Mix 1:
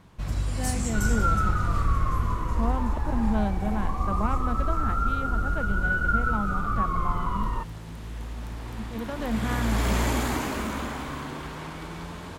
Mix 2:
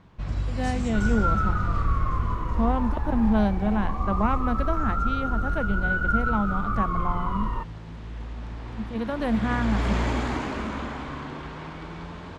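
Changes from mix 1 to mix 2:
speech +5.0 dB; first sound: add distance through air 130 m

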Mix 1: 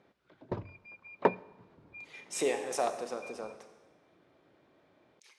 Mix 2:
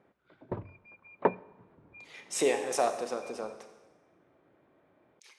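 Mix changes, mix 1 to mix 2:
speech +3.5 dB; background: add low-pass 2.2 kHz 12 dB/octave

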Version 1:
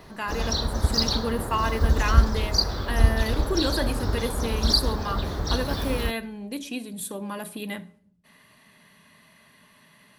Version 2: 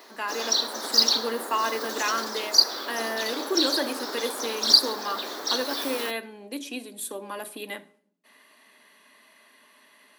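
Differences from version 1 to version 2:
background: add tilt EQ +2.5 dB/octave; master: add steep high-pass 260 Hz 36 dB/octave

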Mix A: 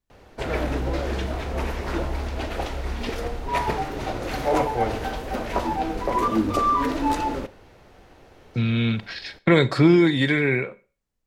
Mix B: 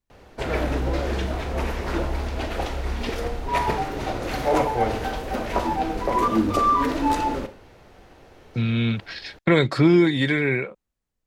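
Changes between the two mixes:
speech: send off; background: send +7.5 dB

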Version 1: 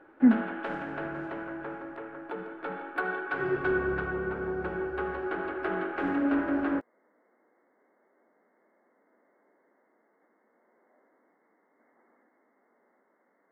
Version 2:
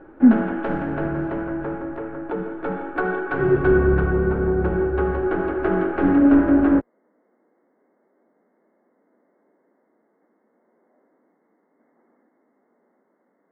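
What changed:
background +6.5 dB; master: add tilt EQ -3.5 dB/octave

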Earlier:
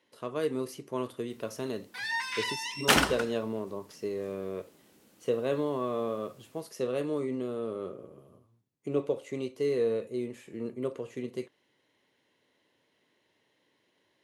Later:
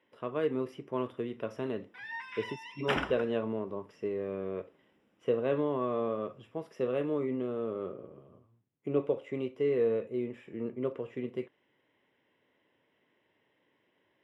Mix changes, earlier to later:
background -8.0 dB; master: add Savitzky-Golay filter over 25 samples

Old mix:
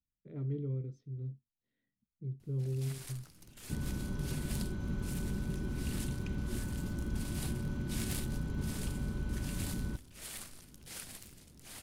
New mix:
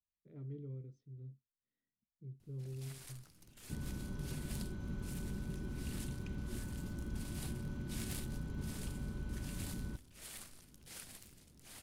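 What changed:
speech -9.5 dB; first sound -5.0 dB; second sound -5.5 dB

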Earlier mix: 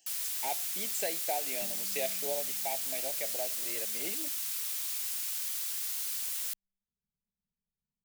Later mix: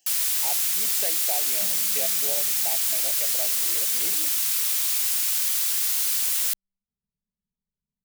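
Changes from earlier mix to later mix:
first sound +11.5 dB; second sound +3.5 dB

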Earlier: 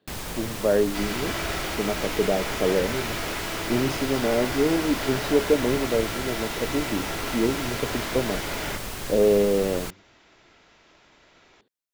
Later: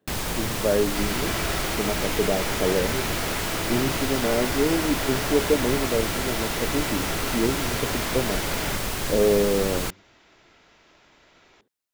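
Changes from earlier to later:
speech: add distance through air 390 m; first sound +5.5 dB

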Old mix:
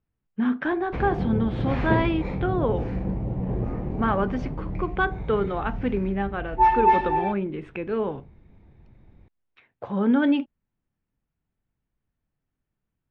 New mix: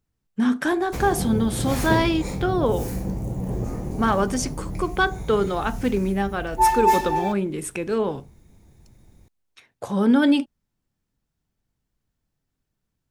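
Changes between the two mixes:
speech +3.0 dB; master: remove low-pass 2.9 kHz 24 dB/octave

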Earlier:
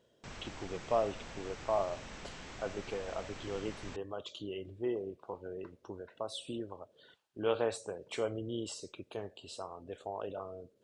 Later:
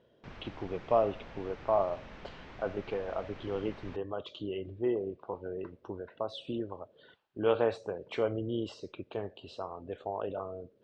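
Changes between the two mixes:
speech +5.0 dB; master: add distance through air 250 m

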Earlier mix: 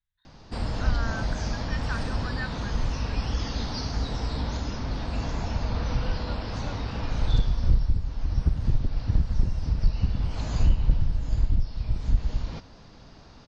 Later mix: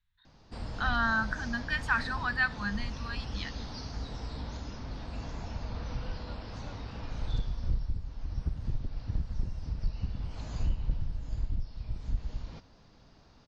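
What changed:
speech +8.5 dB; background -9.5 dB

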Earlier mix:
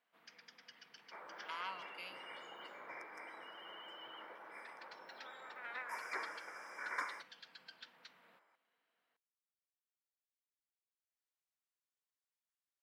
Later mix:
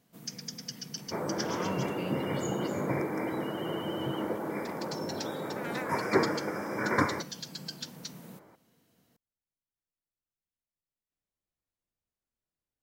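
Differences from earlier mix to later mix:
first sound: remove distance through air 480 m; second sound +8.5 dB; master: remove high-pass 1.2 kHz 12 dB/octave

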